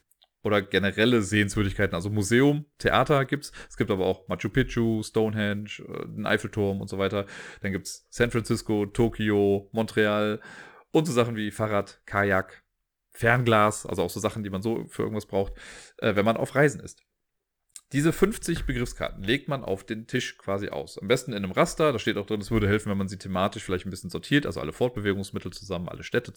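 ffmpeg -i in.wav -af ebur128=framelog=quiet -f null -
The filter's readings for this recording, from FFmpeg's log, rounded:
Integrated loudness:
  I:         -26.4 LUFS
  Threshold: -36.7 LUFS
Loudness range:
  LRA:         4.0 LU
  Threshold: -46.8 LUFS
  LRA low:   -28.9 LUFS
  LRA high:  -24.9 LUFS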